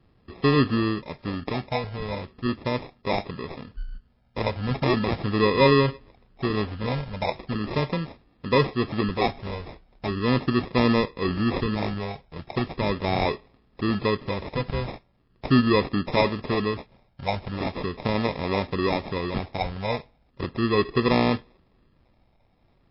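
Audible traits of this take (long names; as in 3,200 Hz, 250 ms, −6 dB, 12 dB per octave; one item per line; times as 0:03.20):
phaser sweep stages 12, 0.39 Hz, lowest notch 330–2,700 Hz
aliases and images of a low sample rate 1,500 Hz, jitter 0%
MP3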